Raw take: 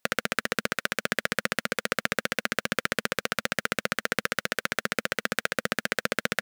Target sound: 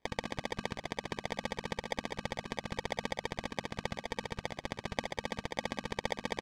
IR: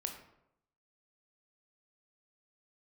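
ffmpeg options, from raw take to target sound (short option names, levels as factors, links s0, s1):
-af "aecho=1:1:186:0.119,asoftclip=type=tanh:threshold=0.1,equalizer=f=1700:t=o:w=0.39:g=-12,bandreject=f=50:t=h:w=6,bandreject=f=100:t=h:w=6,bandreject=f=150:t=h:w=6,bandreject=f=200:t=h:w=6,bandreject=f=250:t=h:w=6,bandreject=f=300:t=h:w=6,acrusher=samples=32:mix=1:aa=0.000001,lowpass=4900,tiltshelf=f=830:g=-5,volume=1.12"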